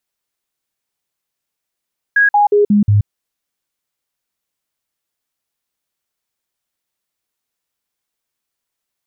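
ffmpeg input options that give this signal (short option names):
-f lavfi -i "aevalsrc='0.422*clip(min(mod(t,0.18),0.13-mod(t,0.18))/0.005,0,1)*sin(2*PI*1650*pow(2,-floor(t/0.18)/1)*mod(t,0.18))':d=0.9:s=44100"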